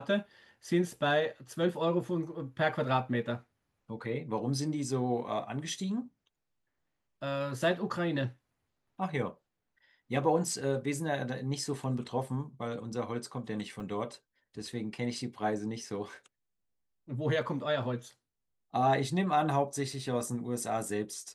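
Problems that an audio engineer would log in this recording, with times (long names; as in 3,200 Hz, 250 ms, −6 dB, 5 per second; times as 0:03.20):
0:13.80: drop-out 2.2 ms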